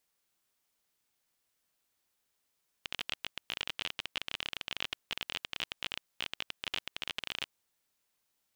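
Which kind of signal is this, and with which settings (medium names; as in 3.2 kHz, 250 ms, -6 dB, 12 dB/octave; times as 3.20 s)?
random clicks 26 per s -17.5 dBFS 4.66 s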